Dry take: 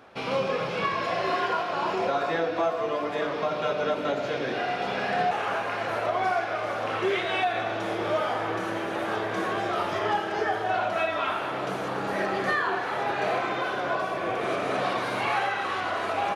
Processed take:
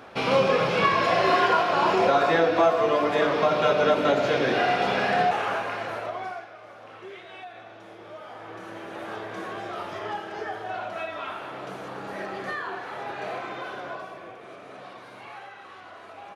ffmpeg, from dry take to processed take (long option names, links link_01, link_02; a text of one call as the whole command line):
ffmpeg -i in.wav -af "volume=15.5dB,afade=type=out:start_time=4.67:duration=1.37:silence=0.281838,afade=type=out:start_time=6.04:duration=0.48:silence=0.281838,afade=type=in:start_time=8.19:duration=0.87:silence=0.334965,afade=type=out:start_time=13.75:duration=0.64:silence=0.334965" out.wav